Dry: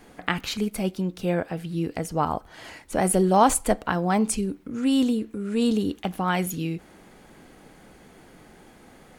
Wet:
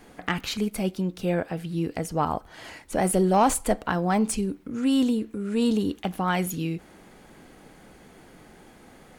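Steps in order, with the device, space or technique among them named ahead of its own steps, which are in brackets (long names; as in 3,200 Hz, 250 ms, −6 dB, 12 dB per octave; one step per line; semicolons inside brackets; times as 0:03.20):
saturation between pre-emphasis and de-emphasis (high-shelf EQ 4,000 Hz +12 dB; soft clipping −10.5 dBFS, distortion −15 dB; high-shelf EQ 4,000 Hz −12 dB)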